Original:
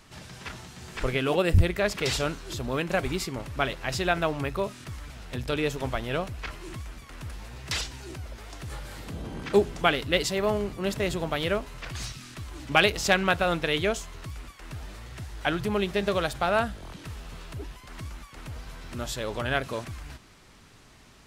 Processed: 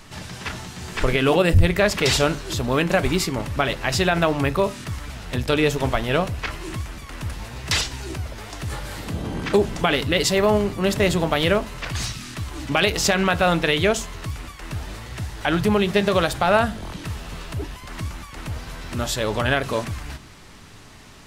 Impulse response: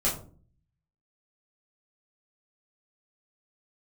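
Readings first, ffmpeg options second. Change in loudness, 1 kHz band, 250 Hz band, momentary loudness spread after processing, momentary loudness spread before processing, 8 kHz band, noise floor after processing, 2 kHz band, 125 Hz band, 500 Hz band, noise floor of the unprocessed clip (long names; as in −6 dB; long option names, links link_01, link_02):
+5.5 dB, +6.0 dB, +8.0 dB, 14 LU, 18 LU, +8.5 dB, −44 dBFS, +5.5 dB, +7.5 dB, +6.5 dB, −53 dBFS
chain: -filter_complex "[0:a]alimiter=limit=-16.5dB:level=0:latency=1:release=59,asplit=2[link_01][link_02];[1:a]atrim=start_sample=2205,asetrate=66150,aresample=44100[link_03];[link_02][link_03]afir=irnorm=-1:irlink=0,volume=-20dB[link_04];[link_01][link_04]amix=inputs=2:normalize=0,volume=8dB"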